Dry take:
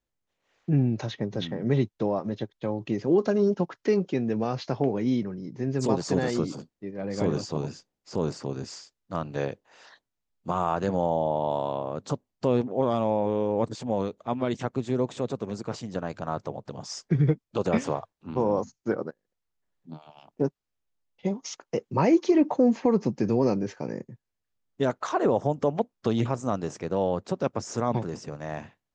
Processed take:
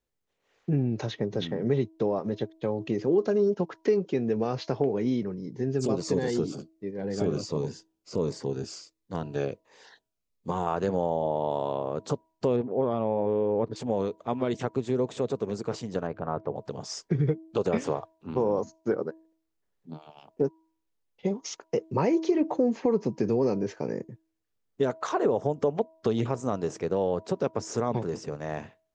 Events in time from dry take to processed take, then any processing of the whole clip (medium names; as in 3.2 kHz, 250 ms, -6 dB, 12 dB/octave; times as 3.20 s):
5.32–10.67 s: Shepard-style phaser falling 1.4 Hz
12.56–13.76 s: distance through air 320 m
16.07–16.56 s: low-pass 1.7 kHz
whole clip: peaking EQ 430 Hz +6.5 dB 0.39 oct; de-hum 322.3 Hz, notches 3; compression 2:1, threshold -24 dBFS